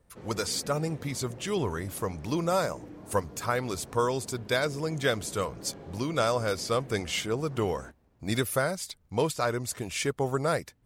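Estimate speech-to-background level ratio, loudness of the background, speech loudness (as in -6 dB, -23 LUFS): 17.0 dB, -47.0 LUFS, -30.0 LUFS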